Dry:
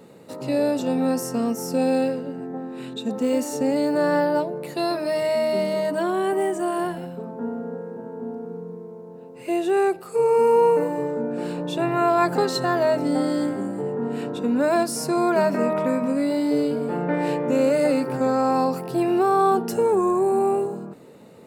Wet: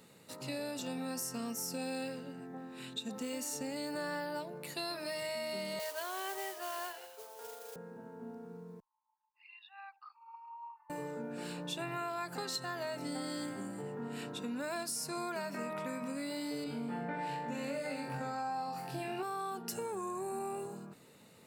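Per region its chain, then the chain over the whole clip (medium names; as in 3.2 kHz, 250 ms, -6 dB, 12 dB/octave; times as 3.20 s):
5.79–7.76 s: Chebyshev band-pass 420–5100 Hz, order 4 + modulation noise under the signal 18 dB
8.80–10.90 s: resonances exaggerated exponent 2 + brick-wall FIR band-pass 780–5400 Hz + band-stop 1.4 kHz, Q 11
16.64–19.23 s: treble shelf 4.2 kHz -10 dB + flutter echo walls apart 3.7 m, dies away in 0.4 s
whole clip: amplifier tone stack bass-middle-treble 5-5-5; compression, threshold -40 dBFS; trim +4.5 dB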